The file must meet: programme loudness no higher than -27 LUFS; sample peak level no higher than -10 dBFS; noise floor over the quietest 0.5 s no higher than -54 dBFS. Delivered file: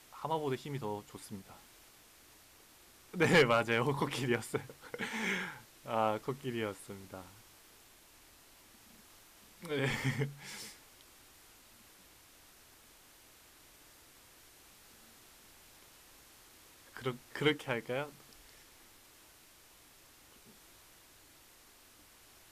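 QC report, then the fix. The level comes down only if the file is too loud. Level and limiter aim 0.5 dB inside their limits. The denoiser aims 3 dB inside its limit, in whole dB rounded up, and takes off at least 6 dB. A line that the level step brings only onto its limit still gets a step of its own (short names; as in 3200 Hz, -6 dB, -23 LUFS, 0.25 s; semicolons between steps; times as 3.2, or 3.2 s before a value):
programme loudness -35.0 LUFS: OK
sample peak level -17.5 dBFS: OK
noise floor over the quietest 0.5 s -61 dBFS: OK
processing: none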